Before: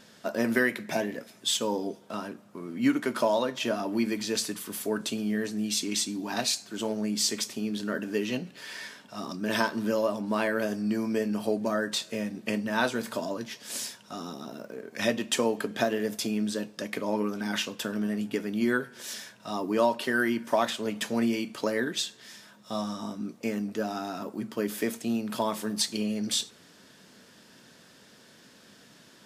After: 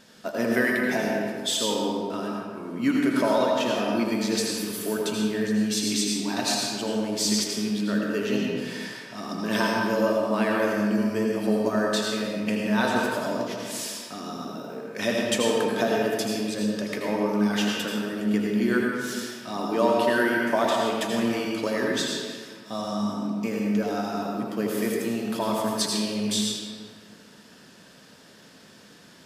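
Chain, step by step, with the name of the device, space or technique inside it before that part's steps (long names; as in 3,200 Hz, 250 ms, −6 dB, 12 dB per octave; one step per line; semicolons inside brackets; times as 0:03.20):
stairwell (convolution reverb RT60 1.8 s, pre-delay 75 ms, DRR −2 dB)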